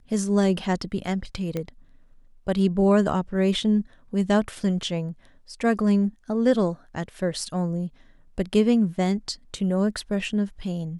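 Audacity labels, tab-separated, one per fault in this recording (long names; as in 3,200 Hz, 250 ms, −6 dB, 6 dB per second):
1.570000	1.570000	click −16 dBFS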